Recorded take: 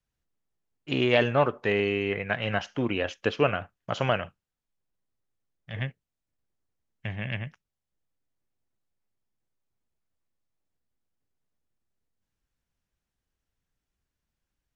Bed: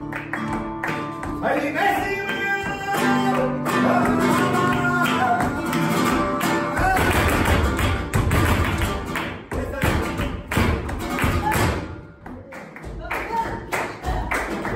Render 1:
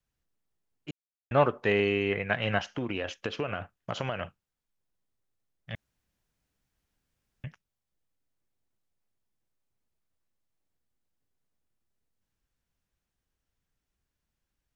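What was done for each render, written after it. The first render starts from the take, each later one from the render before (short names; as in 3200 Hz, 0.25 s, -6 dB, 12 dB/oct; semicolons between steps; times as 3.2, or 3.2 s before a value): 0.91–1.31 mute; 2.73–4.21 compressor, threshold -27 dBFS; 5.75–7.44 room tone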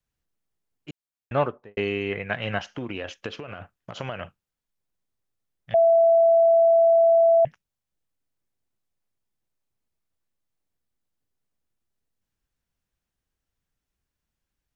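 1.36–1.77 studio fade out; 3.39–4.01 compressor, threshold -32 dBFS; 5.74–7.45 bleep 666 Hz -13.5 dBFS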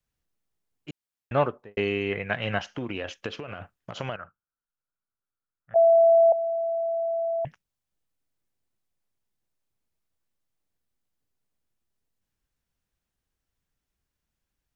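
4.16–5.76 ladder low-pass 1500 Hz, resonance 75%; 6.32–7.45 Butterworth band-pass 440 Hz, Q 2.1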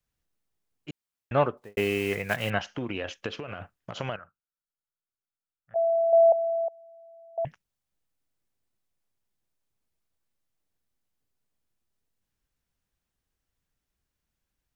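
1.57–2.51 block floating point 5-bit; 4.19–6.13 gain -7 dB; 6.68–7.38 HPF 1300 Hz 24 dB/oct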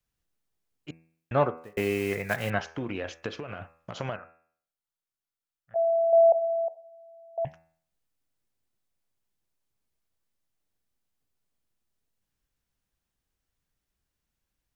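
de-hum 81.57 Hz, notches 33; dynamic EQ 2900 Hz, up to -7 dB, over -51 dBFS, Q 4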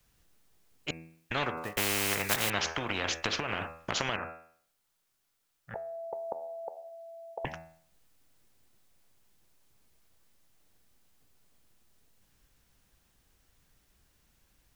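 spectral compressor 4:1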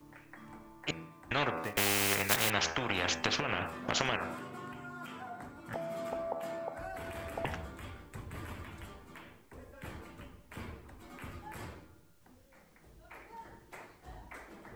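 add bed -25.5 dB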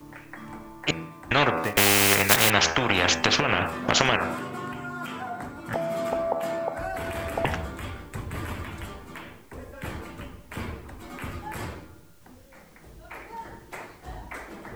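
gain +10.5 dB; limiter -1 dBFS, peak gain reduction 1.5 dB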